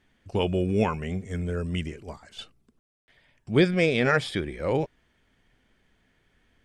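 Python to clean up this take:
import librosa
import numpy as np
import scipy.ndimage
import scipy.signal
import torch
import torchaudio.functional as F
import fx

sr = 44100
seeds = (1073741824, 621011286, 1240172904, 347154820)

y = fx.fix_ambience(x, sr, seeds[0], print_start_s=4.87, print_end_s=5.37, start_s=2.79, end_s=3.08)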